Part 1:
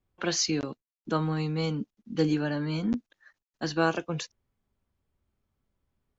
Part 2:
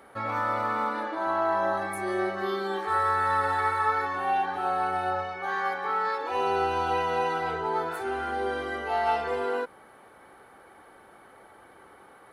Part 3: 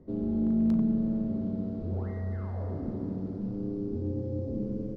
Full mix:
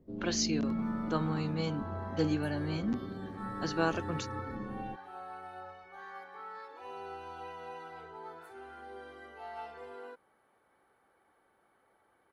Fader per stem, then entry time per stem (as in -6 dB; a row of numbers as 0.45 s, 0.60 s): -5.0 dB, -18.0 dB, -8.5 dB; 0.00 s, 0.50 s, 0.00 s